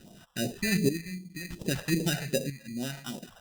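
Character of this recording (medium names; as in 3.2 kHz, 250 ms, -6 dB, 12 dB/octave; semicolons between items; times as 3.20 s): aliases and images of a low sample rate 2.2 kHz, jitter 0%; chopped level 0.62 Hz, depth 65%, duty 55%; phasing stages 2, 2.6 Hz, lowest notch 280–1500 Hz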